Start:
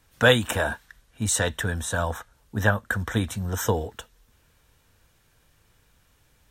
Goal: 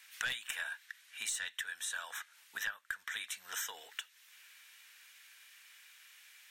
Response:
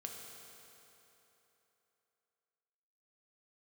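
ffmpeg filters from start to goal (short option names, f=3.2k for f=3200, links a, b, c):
-af "highpass=f=2.1k:t=q:w=2,aeval=exprs='0.75*(cos(1*acos(clip(val(0)/0.75,-1,1)))-cos(1*PI/2))+0.0531*(cos(4*acos(clip(val(0)/0.75,-1,1)))-cos(4*PI/2))+0.15*(cos(5*acos(clip(val(0)/0.75,-1,1)))-cos(5*PI/2))':c=same,acompressor=threshold=-40dB:ratio=4"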